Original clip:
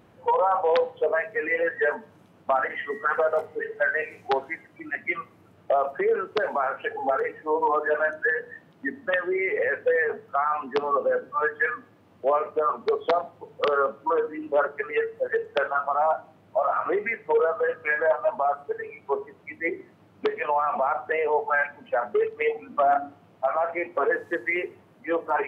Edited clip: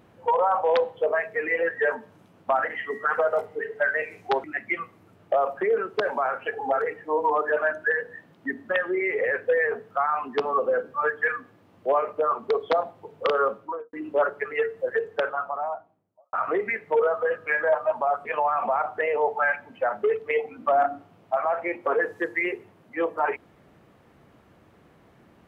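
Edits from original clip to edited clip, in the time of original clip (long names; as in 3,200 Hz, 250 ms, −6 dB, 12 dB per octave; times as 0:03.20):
0:04.44–0:04.82: remove
0:13.89–0:14.31: fade out and dull
0:15.34–0:16.71: fade out and dull
0:18.63–0:20.36: remove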